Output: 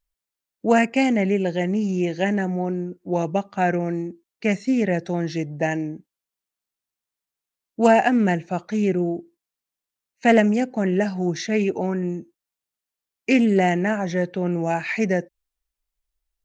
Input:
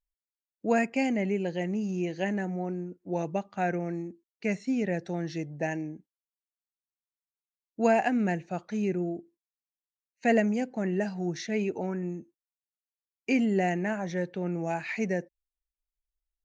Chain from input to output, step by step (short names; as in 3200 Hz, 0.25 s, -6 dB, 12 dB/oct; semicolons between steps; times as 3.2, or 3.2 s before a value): Doppler distortion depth 0.1 ms; gain +8 dB